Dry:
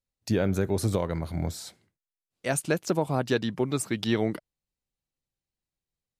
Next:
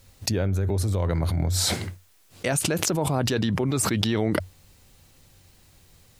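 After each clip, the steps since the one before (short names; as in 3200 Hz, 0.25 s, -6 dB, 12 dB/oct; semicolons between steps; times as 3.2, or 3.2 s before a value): bell 92 Hz +13 dB 0.27 oct; fast leveller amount 100%; gain -6 dB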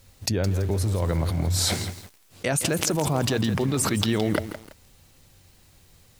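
lo-fi delay 0.166 s, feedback 35%, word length 6-bit, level -10.5 dB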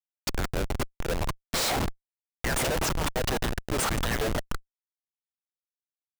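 LFO high-pass saw up 1.9 Hz 480–2100 Hz; Schmitt trigger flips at -27 dBFS; gain +4 dB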